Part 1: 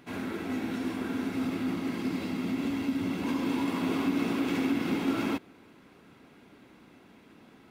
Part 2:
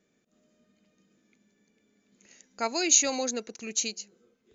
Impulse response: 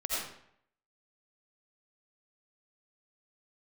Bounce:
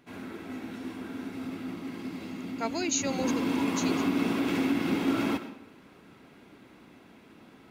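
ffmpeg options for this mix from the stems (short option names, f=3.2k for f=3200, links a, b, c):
-filter_complex "[0:a]afade=t=in:st=2.94:d=0.35:silence=0.421697,asplit=2[a][b];[b]volume=-14dB[c];[1:a]highshelf=f=4.5k:g=-10.5,volume=-2.5dB[d];[2:a]atrim=start_sample=2205[e];[c][e]afir=irnorm=-1:irlink=0[f];[a][d][f]amix=inputs=3:normalize=0"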